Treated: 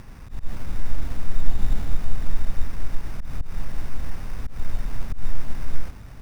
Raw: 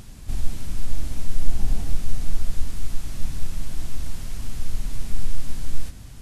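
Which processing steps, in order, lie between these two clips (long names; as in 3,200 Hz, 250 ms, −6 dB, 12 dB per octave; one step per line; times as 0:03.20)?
decimation without filtering 12×
volume swells 133 ms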